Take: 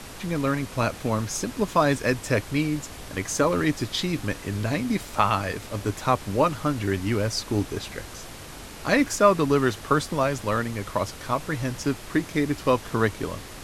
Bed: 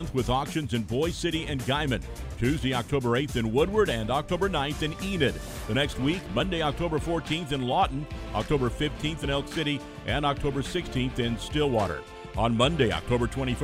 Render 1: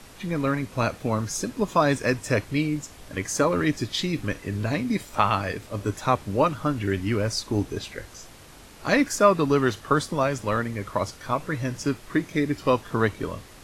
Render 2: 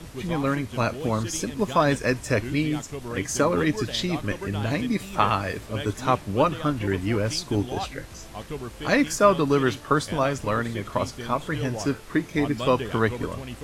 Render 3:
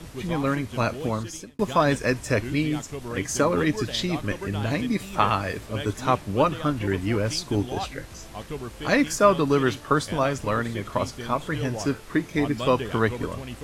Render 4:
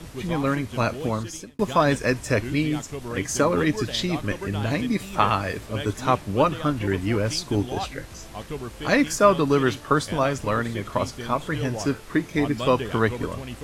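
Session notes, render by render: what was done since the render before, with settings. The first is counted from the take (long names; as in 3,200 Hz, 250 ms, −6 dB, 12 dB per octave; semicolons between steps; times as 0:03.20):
noise reduction from a noise print 7 dB
mix in bed −9 dB
0:01.01–0:01.59: fade out
level +1 dB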